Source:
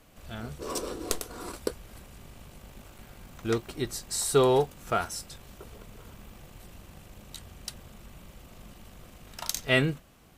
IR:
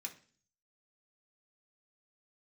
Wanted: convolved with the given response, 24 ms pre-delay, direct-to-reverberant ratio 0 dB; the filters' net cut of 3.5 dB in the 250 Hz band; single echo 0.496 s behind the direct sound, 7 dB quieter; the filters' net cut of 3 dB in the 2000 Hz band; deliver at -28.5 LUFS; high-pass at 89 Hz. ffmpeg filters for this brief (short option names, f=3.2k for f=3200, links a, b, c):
-filter_complex "[0:a]highpass=89,equalizer=f=250:t=o:g=-5,equalizer=f=2k:t=o:g=-3.5,aecho=1:1:496:0.447,asplit=2[a][b];[1:a]atrim=start_sample=2205,adelay=24[c];[b][c]afir=irnorm=-1:irlink=0,volume=3dB[d];[a][d]amix=inputs=2:normalize=0,volume=-0.5dB"